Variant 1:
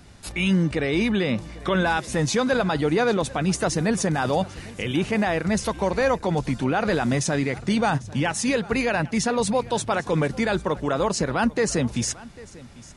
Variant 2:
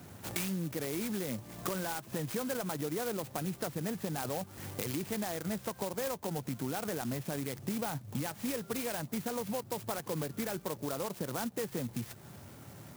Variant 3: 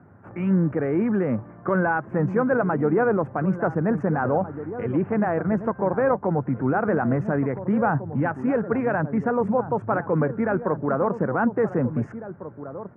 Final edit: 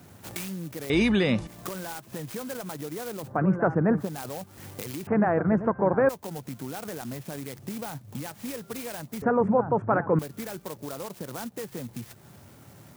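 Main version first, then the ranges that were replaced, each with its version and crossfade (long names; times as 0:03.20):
2
0:00.90–0:01.47: punch in from 1
0:03.29–0:04.02: punch in from 3, crossfade 0.16 s
0:05.07–0:06.09: punch in from 3
0:09.22–0:10.19: punch in from 3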